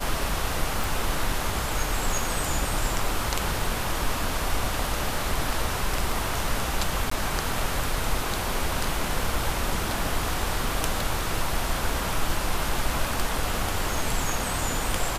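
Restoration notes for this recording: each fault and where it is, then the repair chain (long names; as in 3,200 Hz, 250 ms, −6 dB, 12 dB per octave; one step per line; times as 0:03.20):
0:00.84: click
0:07.10–0:07.11: drop-out 14 ms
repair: click removal
repair the gap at 0:07.10, 14 ms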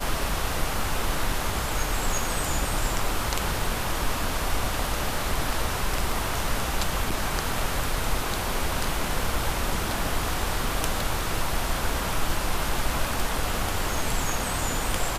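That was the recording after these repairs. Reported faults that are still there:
none of them is left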